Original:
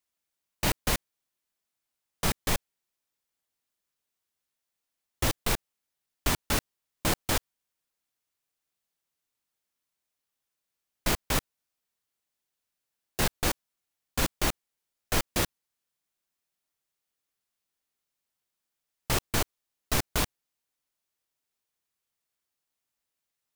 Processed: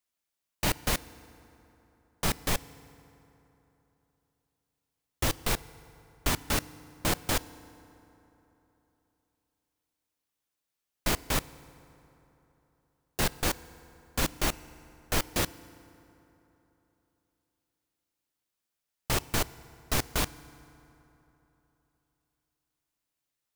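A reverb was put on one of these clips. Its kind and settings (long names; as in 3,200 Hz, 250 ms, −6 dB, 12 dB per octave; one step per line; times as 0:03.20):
feedback delay network reverb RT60 3.4 s, high-frequency decay 0.55×, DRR 17.5 dB
level −1 dB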